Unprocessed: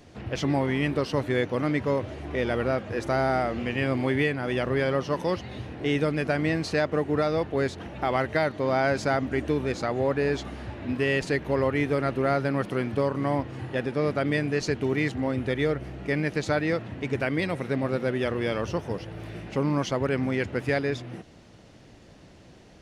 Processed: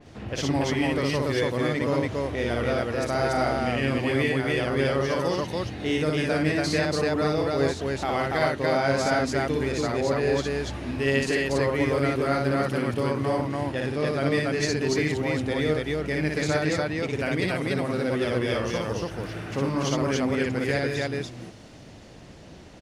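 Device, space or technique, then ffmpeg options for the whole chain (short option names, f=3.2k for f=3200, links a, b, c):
parallel compression: -filter_complex "[0:a]asettb=1/sr,asplit=3[a][b][c];[a]atrim=end=19.084[d];[b]atrim=start=19.08:end=19.51,asetpts=PTS-STARTPTS,afade=t=in:d=0.004:c=qsin,afade=t=out:st=0.426:d=0.004:c=qsin,equalizer=f=1.4k:w=2.2:g=9[e];[c]atrim=start=19.506[f];[d][e]acrossfade=d=0.004:c1=hsin:c2=qsin[g];[g][f]acrossfade=d=0.004:c1=qsin:c2=hsin,asplit=2[h][i];[i]acompressor=threshold=-40dB:ratio=6,volume=-3dB[j];[h][j]amix=inputs=2:normalize=0,aecho=1:1:58.31|285.7:0.794|0.891,adynamicequalizer=threshold=0.00708:dfrequency=3600:dqfactor=0.7:tfrequency=3600:tqfactor=0.7:attack=5:release=100:ratio=0.375:range=3.5:mode=boostabove:tftype=highshelf,volume=-3.5dB"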